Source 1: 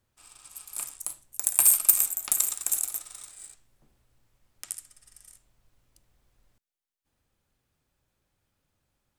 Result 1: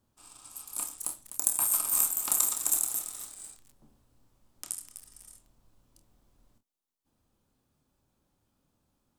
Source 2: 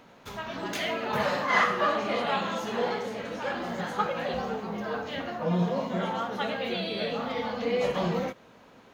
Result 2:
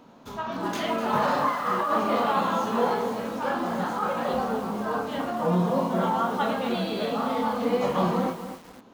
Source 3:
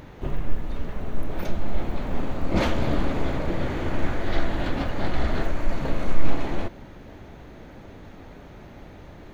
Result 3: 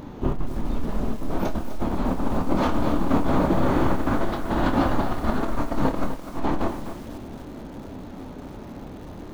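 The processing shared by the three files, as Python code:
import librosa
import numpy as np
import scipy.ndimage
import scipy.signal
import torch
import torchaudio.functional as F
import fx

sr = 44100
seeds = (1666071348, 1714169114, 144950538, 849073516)

p1 = fx.dynamic_eq(x, sr, hz=1200.0, q=0.93, threshold_db=-43.0, ratio=4.0, max_db=7)
p2 = fx.over_compress(p1, sr, threshold_db=-23.0, ratio=-1.0)
p3 = fx.graphic_eq(p2, sr, hz=(250, 1000, 2000), db=(8, 4, -7))
p4 = p3 + fx.room_early_taps(p3, sr, ms=(27, 48), db=(-7.5, -17.0), dry=0)
p5 = fx.echo_crushed(p4, sr, ms=251, feedback_pct=35, bits=6, wet_db=-10.0)
y = p5 * 10.0 ** (-2.5 / 20.0)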